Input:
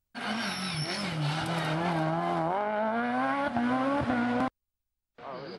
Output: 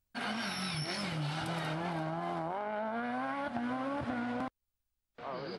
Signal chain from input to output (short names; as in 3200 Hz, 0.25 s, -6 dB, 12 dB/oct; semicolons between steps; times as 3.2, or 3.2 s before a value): compressor, threshold -33 dBFS, peak gain reduction 9 dB